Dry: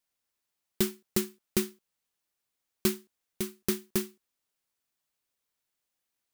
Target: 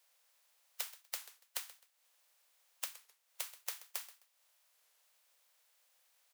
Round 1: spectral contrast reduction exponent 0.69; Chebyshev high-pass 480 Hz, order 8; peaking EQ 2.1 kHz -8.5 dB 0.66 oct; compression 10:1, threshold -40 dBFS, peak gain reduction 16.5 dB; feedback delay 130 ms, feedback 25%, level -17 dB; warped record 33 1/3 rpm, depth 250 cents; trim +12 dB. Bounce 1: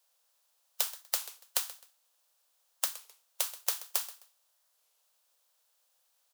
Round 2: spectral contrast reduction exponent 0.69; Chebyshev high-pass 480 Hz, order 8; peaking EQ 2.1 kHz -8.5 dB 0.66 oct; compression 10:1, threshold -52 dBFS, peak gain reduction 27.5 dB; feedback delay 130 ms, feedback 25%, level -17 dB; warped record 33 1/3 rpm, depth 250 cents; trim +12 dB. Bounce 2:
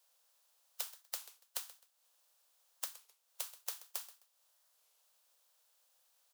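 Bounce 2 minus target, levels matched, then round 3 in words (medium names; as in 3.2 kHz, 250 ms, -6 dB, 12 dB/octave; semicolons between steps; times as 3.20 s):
2 kHz band -4.5 dB
spectral contrast reduction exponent 0.69; Chebyshev high-pass 480 Hz, order 8; compression 10:1, threshold -52 dBFS, peak gain reduction 28 dB; feedback delay 130 ms, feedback 25%, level -17 dB; warped record 33 1/3 rpm, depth 250 cents; trim +12 dB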